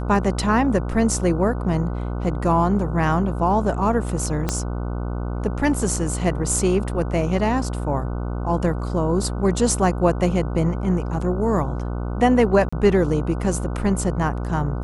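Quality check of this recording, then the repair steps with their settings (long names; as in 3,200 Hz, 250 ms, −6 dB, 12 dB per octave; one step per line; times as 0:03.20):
mains buzz 60 Hz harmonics 25 −26 dBFS
0:04.49: click −8 dBFS
0:12.69–0:12.72: drop-out 35 ms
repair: click removal
hum removal 60 Hz, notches 25
repair the gap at 0:12.69, 35 ms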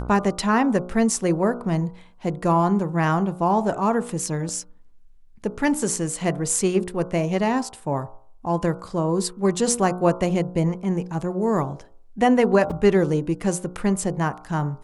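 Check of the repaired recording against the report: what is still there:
0:04.49: click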